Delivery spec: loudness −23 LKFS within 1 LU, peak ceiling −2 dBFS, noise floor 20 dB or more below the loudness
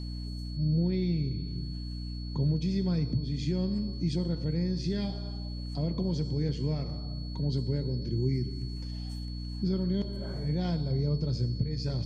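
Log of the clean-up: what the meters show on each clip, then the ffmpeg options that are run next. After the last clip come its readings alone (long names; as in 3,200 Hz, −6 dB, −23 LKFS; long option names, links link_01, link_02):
mains hum 60 Hz; hum harmonics up to 300 Hz; level of the hum −34 dBFS; interfering tone 4,400 Hz; level of the tone −47 dBFS; integrated loudness −31.5 LKFS; sample peak −16.5 dBFS; target loudness −23.0 LKFS
→ -af "bandreject=frequency=60:width_type=h:width=4,bandreject=frequency=120:width_type=h:width=4,bandreject=frequency=180:width_type=h:width=4,bandreject=frequency=240:width_type=h:width=4,bandreject=frequency=300:width_type=h:width=4"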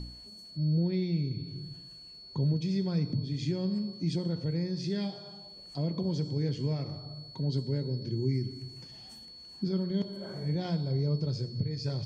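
mains hum none found; interfering tone 4,400 Hz; level of the tone −47 dBFS
→ -af "bandreject=frequency=4400:width=30"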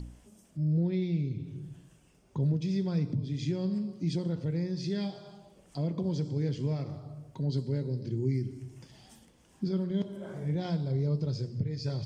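interfering tone none found; integrated loudness −32.5 LKFS; sample peak −19.0 dBFS; target loudness −23.0 LKFS
→ -af "volume=9.5dB"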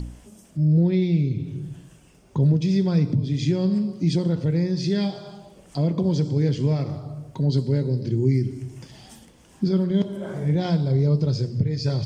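integrated loudness −23.0 LKFS; sample peak −9.5 dBFS; background noise floor −52 dBFS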